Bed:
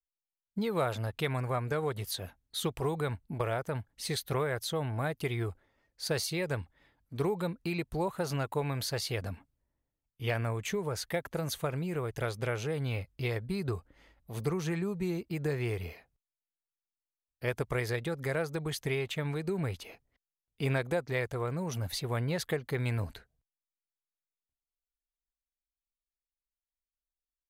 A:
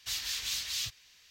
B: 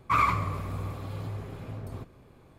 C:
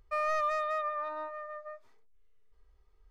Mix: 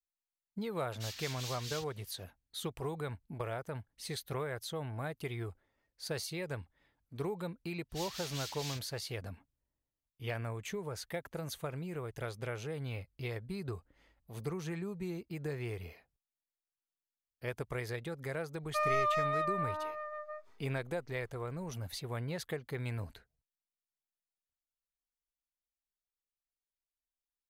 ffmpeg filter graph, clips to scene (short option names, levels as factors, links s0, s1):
-filter_complex "[1:a]asplit=2[s0][s1];[0:a]volume=0.473[s2];[s0]atrim=end=1.3,asetpts=PTS-STARTPTS,volume=0.335,afade=t=in:d=0.004:c=hsin,afade=t=out:st=1.296:d=0.004:c=hsin,adelay=940[s3];[s1]atrim=end=1.3,asetpts=PTS-STARTPTS,volume=0.355,afade=t=in:d=0.05,afade=t=out:st=1.25:d=0.05,adelay=7890[s4];[3:a]atrim=end=3.1,asetpts=PTS-STARTPTS,volume=0.944,afade=t=in:d=0.004:c=hsin,afade=t=out:st=3.096:d=0.004:c=hsin,adelay=18630[s5];[s2][s3][s4][s5]amix=inputs=4:normalize=0"